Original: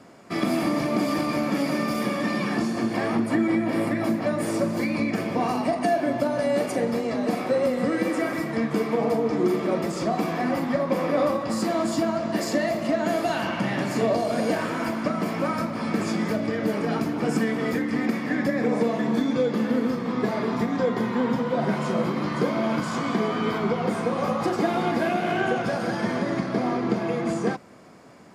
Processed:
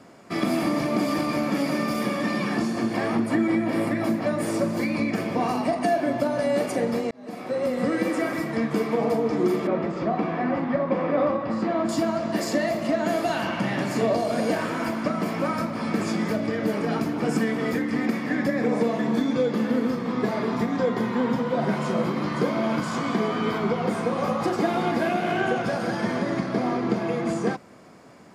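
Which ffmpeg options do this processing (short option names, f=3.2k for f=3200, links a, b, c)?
-filter_complex "[0:a]asettb=1/sr,asplit=3[a][b][c];[a]atrim=end=9.674[d];[b]atrim=start=9.67:end=11.89,asetpts=PTS-STARTPTS,afade=t=in:d=0.004:c=qsin,afade=t=out:st=2.216:d=0.004:c=qsin,lowpass=2.5k[e];[c]atrim=start=11.886[f];[d][e]acrossfade=d=0.004:c1=hsin:c2=qsin[g];[g][f]acrossfade=d=0.004:c1=qsin:c2=hsin,asplit=2[h][i];[h]atrim=end=7.11,asetpts=PTS-STARTPTS,afade=t=out:st=7.106:d=0.004:c=hsin[j];[i]atrim=start=7.11,asetpts=PTS-STARTPTS,afade=t=in:d=0.72[k];[j][k]concat=n=2:v=0:a=1"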